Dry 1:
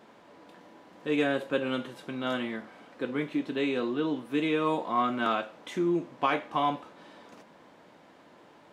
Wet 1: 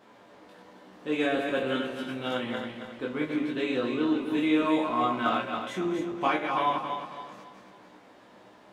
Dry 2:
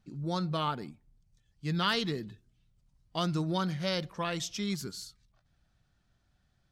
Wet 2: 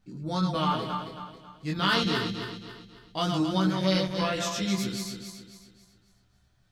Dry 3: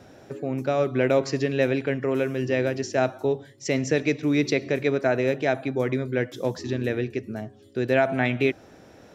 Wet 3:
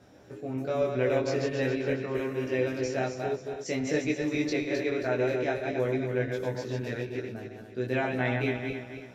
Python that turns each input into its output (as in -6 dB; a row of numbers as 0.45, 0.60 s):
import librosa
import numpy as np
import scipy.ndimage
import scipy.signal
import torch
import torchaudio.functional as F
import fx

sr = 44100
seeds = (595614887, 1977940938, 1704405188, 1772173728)

y = fx.reverse_delay_fb(x, sr, ms=136, feedback_pct=62, wet_db=-4.5)
y = fx.room_early_taps(y, sr, ms=(16, 26), db=(-3.0, -3.5))
y = y * 10.0 ** (-30 / 20.0) / np.sqrt(np.mean(np.square(y)))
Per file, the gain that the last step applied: -3.0, +0.5, -9.5 dB